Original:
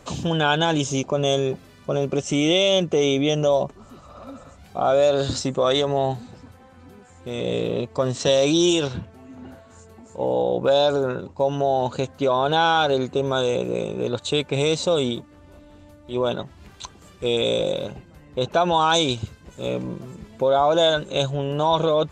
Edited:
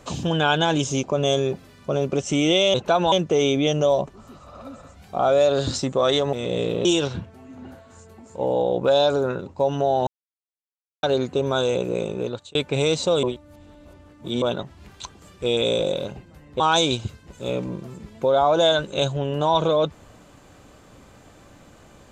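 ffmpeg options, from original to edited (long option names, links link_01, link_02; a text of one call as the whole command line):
ffmpeg -i in.wav -filter_complex "[0:a]asplit=11[link_01][link_02][link_03][link_04][link_05][link_06][link_07][link_08][link_09][link_10][link_11];[link_01]atrim=end=2.742[link_12];[link_02]atrim=start=18.398:end=18.782[link_13];[link_03]atrim=start=2.738:end=5.952[link_14];[link_04]atrim=start=7.278:end=7.802[link_15];[link_05]atrim=start=8.648:end=11.87,asetpts=PTS-STARTPTS,afade=type=out:start_time=3.218:duration=0.004:curve=hsin[link_16];[link_06]atrim=start=11.87:end=12.83,asetpts=PTS-STARTPTS,volume=0[link_17];[link_07]atrim=start=12.83:end=14.35,asetpts=PTS-STARTPTS,afade=type=in:duration=0.004:curve=hsin,afade=type=out:start_time=1.13:duration=0.39[link_18];[link_08]atrim=start=14.35:end=15.032,asetpts=PTS-STARTPTS,afade=type=in:duration=0.004:curve=hsin[link_19];[link_09]atrim=start=15.028:end=16.222,asetpts=PTS-STARTPTS,areverse[link_20];[link_10]atrim=start=16.218:end=18.402[link_21];[link_11]atrim=start=18.778[link_22];[link_12][link_13]acrossfade=duration=0.004:curve1=hsin:curve2=hsin[link_23];[link_23][link_14]acrossfade=duration=0.004:curve1=hsin:curve2=hsin[link_24];[link_24][link_15]acrossfade=duration=0.004:curve1=hsin:curve2=hsin[link_25];[link_16][link_17][link_18][link_19]concat=n=4:v=0:a=1[link_26];[link_25][link_26]acrossfade=duration=0.004:curve1=hsin:curve2=hsin[link_27];[link_27][link_20]acrossfade=duration=0.004:curve1=hsin:curve2=hsin[link_28];[link_28][link_21]acrossfade=duration=0.004:curve1=hsin:curve2=hsin[link_29];[link_29][link_22]acrossfade=duration=0.004:curve1=hsin:curve2=hsin" out.wav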